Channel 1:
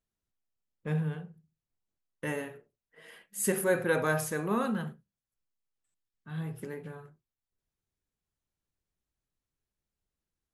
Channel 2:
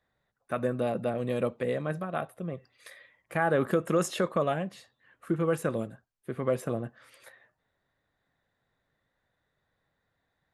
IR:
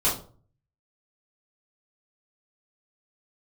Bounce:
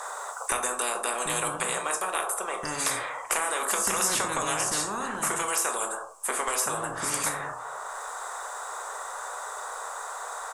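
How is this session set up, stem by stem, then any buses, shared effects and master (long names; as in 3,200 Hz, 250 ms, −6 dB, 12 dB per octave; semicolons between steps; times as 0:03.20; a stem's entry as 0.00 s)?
−8.0 dB, 0.40 s, send −20 dB, low-pass filter 6,300 Hz
+3.0 dB, 0.00 s, send −15.5 dB, elliptic high-pass filter 460 Hz, stop band 40 dB; multiband upward and downward compressor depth 70%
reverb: on, RT60 0.45 s, pre-delay 3 ms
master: drawn EQ curve 110 Hz 0 dB, 150 Hz −12 dB, 310 Hz +3 dB, 490 Hz −13 dB, 1,100 Hz +12 dB, 1,800 Hz −14 dB, 2,600 Hz −14 dB, 4,100 Hz −12 dB, 8,000 Hz +13 dB, 14,000 Hz −13 dB; every bin compressed towards the loudest bin 4 to 1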